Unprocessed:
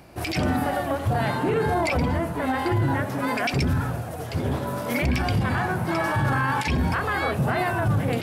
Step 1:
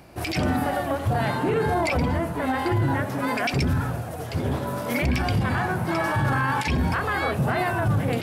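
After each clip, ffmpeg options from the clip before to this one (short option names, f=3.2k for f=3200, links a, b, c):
-af "asoftclip=type=hard:threshold=-14dB"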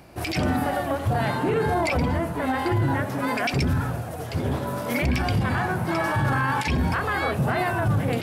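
-af anull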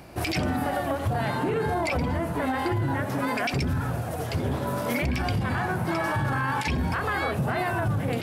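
-af "acompressor=threshold=-27dB:ratio=3,volume=2.5dB"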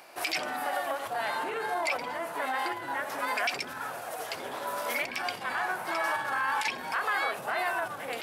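-af "highpass=710"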